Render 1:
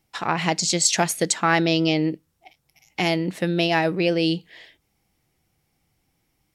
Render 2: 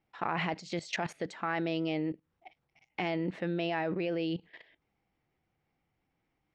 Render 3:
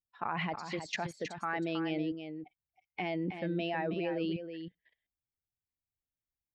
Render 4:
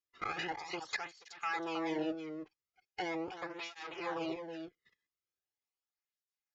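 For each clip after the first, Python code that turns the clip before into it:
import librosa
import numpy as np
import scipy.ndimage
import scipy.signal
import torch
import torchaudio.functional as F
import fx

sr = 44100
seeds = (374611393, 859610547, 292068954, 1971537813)

y1 = scipy.signal.sosfilt(scipy.signal.butter(2, 2300.0, 'lowpass', fs=sr, output='sos'), x)
y1 = fx.low_shelf(y1, sr, hz=200.0, db=-6.5)
y1 = fx.level_steps(y1, sr, step_db=16)
y2 = fx.bin_expand(y1, sr, power=1.5)
y2 = y2 + 10.0 ** (-8.5 / 20.0) * np.pad(y2, (int(319 * sr / 1000.0), 0))[:len(y2)]
y3 = fx.lower_of_two(y2, sr, delay_ms=2.4)
y3 = scipy.signal.sosfilt(scipy.signal.cheby1(6, 3, 7100.0, 'lowpass', fs=sr, output='sos'), y3)
y3 = fx.flanger_cancel(y3, sr, hz=0.4, depth_ms=1.4)
y3 = F.gain(torch.from_numpy(y3), 5.0).numpy()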